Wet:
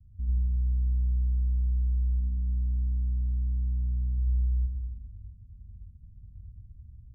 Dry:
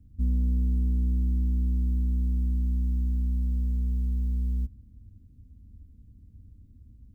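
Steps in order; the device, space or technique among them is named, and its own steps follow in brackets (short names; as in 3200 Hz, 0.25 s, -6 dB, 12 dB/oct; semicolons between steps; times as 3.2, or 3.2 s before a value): 2.19–4.18 comb 7.3 ms, depth 49%; club heard from the street (limiter -24 dBFS, peak gain reduction 5.5 dB; LPF 160 Hz 24 dB/oct; reverb RT60 1.0 s, pre-delay 80 ms, DRR -2 dB); gain -1 dB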